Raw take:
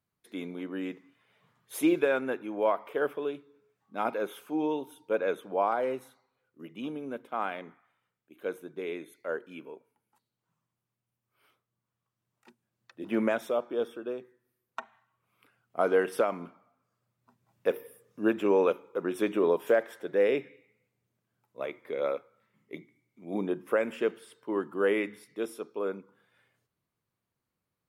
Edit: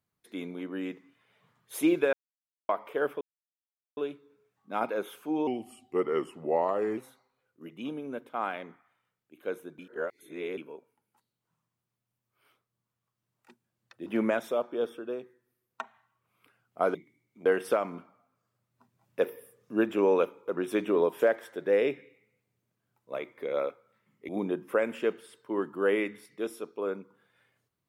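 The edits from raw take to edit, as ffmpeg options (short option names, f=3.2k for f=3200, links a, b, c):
-filter_complex "[0:a]asplit=11[a][b][c][d][e][f][g][h][i][j][k];[a]atrim=end=2.13,asetpts=PTS-STARTPTS,afade=t=out:st=2.126:d=0.004:c=hsin[l];[b]atrim=start=2.13:end=2.69,asetpts=PTS-STARTPTS,volume=0[m];[c]atrim=start=2.69:end=3.21,asetpts=PTS-STARTPTS,afade=t=in:d=0.004:c=hsin,afade=t=out:st=0.516:d=0.004:c=hsin,apad=pad_dur=0.76[n];[d]atrim=start=3.21:end=4.714,asetpts=PTS-STARTPTS,afade=t=in:d=0.004:c=hsin[o];[e]atrim=start=4.71:end=5.96,asetpts=PTS-STARTPTS,asetrate=36603,aresample=44100[p];[f]atrim=start=5.956:end=8.772[q];[g]atrim=start=8.768:end=9.562,asetpts=PTS-STARTPTS,areverse[r];[h]atrim=start=9.558:end=15.932[s];[i]atrim=start=22.758:end=23.272[t];[j]atrim=start=15.928:end=22.762[u];[k]atrim=start=23.268[v];[l][m][n][o]concat=n=4:v=0:a=1[w];[w][p]acrossfade=d=0.004:c1=hsin:c2=hsin[x];[x][q]acrossfade=d=0.004:c1=hsin:c2=hsin[y];[y][r]acrossfade=d=0.004:c1=hsin:c2=hsin[z];[z][s]acrossfade=d=0.004:c1=hsin:c2=hsin[aa];[aa][t]acrossfade=d=0.004:c1=hsin:c2=hsin[ab];[ab][u]acrossfade=d=0.004:c1=hsin:c2=hsin[ac];[ac][v]acrossfade=d=0.004:c1=hsin:c2=hsin"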